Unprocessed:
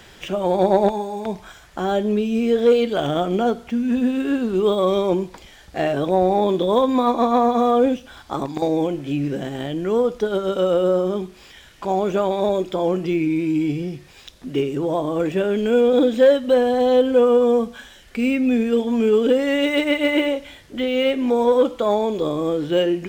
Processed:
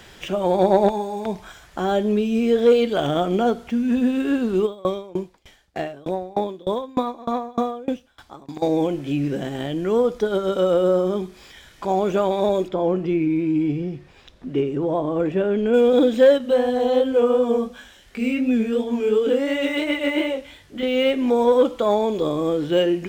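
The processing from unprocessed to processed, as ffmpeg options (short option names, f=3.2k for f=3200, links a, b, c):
-filter_complex "[0:a]asplit=3[a][b][c];[a]afade=t=out:st=4.65:d=0.02[d];[b]aeval=exprs='val(0)*pow(10,-27*if(lt(mod(3.3*n/s,1),2*abs(3.3)/1000),1-mod(3.3*n/s,1)/(2*abs(3.3)/1000),(mod(3.3*n/s,1)-2*abs(3.3)/1000)/(1-2*abs(3.3)/1000))/20)':c=same,afade=t=in:st=4.65:d=0.02,afade=t=out:st=8.61:d=0.02[e];[c]afade=t=in:st=8.61:d=0.02[f];[d][e][f]amix=inputs=3:normalize=0,asettb=1/sr,asplit=3[g][h][i];[g]atrim=end=10.104[j];[h]atrim=start=10.1:end=11.92,asetpts=PTS-STARTPTS,afade=t=in:d=0.004:c=qsin,afade=t=out:st=1.816:d=0.004:c=qsin,bandreject=f=2.8k:w=12[k];[i]atrim=start=11.916[l];[j][k]acrossfade=d=0.004:c1=hsin:c2=qsin[m];[m][l]acrossfade=d=0.004:c1=qsin:c2=hsin,asettb=1/sr,asplit=3[n][o][p];[n]atrim=end=12.684[q];[o]atrim=start=12.68:end=15.74,asetpts=PTS-STARTPTS,afade=t=in:d=0.004:c=qsin,afade=t=out:st=3.056:d=0.004:c=qsin,lowpass=f=1.6k:p=1[r];[p]atrim=start=15.736[s];[q][r]acrossfade=d=0.004:c1=hsin:c2=qsin[t];[t][s]acrossfade=d=0.004:c1=qsin:c2=hsin,asettb=1/sr,asplit=3[u][v][w];[u]atrim=end=16.384[x];[v]atrim=start=16.38:end=20.83,asetpts=PTS-STARTPTS,afade=t=in:d=0.004:c=qsin,afade=t=out:st=4.446:d=0.004:c=qsin,flanger=delay=19.5:depth=5.7:speed=2.8[y];[w]atrim=start=20.826[z];[x][y]acrossfade=d=0.004:c1=hsin:c2=qsin[aa];[aa][z]acrossfade=d=0.004:c1=qsin:c2=hsin"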